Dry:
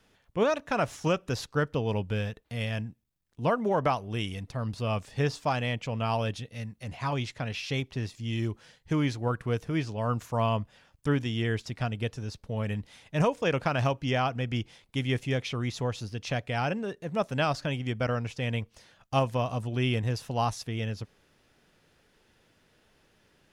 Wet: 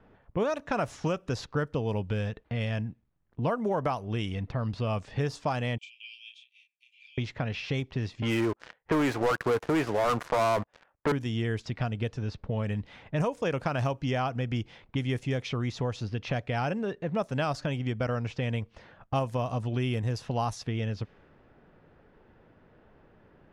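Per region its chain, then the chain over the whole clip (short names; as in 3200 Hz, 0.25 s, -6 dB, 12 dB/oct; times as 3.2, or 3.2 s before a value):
5.78–7.18 rippled Chebyshev high-pass 2300 Hz, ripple 9 dB + doubler 32 ms -5 dB
8.22–11.12 three-band isolator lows -18 dB, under 360 Hz, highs -21 dB, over 2500 Hz + sample leveller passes 5
whole clip: low-pass opened by the level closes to 1200 Hz, open at -23 dBFS; dynamic EQ 3100 Hz, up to -4 dB, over -44 dBFS, Q 0.79; compressor 2.5:1, threshold -39 dBFS; gain +8.5 dB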